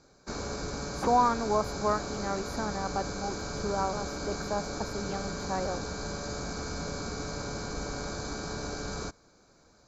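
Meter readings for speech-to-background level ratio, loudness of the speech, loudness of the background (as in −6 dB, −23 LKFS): 4.0 dB, −32.5 LKFS, −36.5 LKFS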